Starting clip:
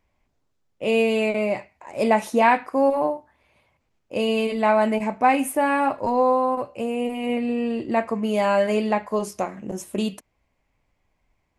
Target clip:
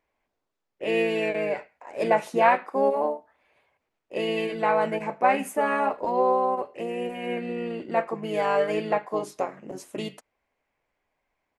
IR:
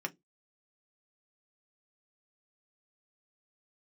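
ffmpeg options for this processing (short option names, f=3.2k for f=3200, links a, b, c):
-filter_complex "[0:a]bass=f=250:g=-14,treble=f=4k:g=-6,asplit=2[a][b];[b]asetrate=33038,aresample=44100,atempo=1.33484,volume=-6dB[c];[a][c]amix=inputs=2:normalize=0,volume=-3dB"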